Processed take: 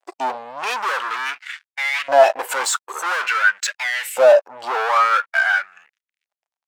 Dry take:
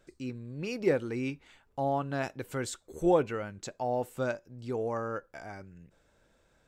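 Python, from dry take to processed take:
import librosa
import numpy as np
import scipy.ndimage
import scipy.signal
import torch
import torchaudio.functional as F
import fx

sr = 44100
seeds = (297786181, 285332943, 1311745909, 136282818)

y = fx.fuzz(x, sr, gain_db=50.0, gate_db=-59.0)
y = fx.filter_lfo_highpass(y, sr, shape='saw_up', hz=0.48, low_hz=650.0, high_hz=2200.0, q=2.0)
y = fx.spectral_expand(y, sr, expansion=1.5)
y = y * librosa.db_to_amplitude(1.0)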